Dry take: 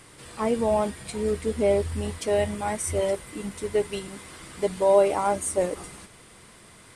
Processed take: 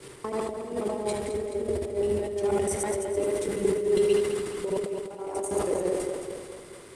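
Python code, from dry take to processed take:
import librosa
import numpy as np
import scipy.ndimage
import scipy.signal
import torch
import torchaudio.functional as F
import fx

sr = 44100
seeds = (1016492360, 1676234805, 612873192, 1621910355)

p1 = fx.block_reorder(x, sr, ms=81.0, group=3)
p2 = fx.high_shelf(p1, sr, hz=7000.0, db=2.5)
p3 = p2 + fx.echo_tape(p2, sr, ms=73, feedback_pct=69, wet_db=-4.5, lp_hz=2300.0, drive_db=2.0, wow_cents=20, dry=0)
p4 = fx.over_compress(p3, sr, threshold_db=-28.0, ratio=-0.5)
p5 = fx.peak_eq(p4, sr, hz=390.0, db=14.0, octaves=0.33)
p6 = fx.echo_feedback(p5, sr, ms=215, feedback_pct=58, wet_db=-9.5)
p7 = fx.sustainer(p6, sr, db_per_s=50.0)
y = p7 * librosa.db_to_amplitude(-7.0)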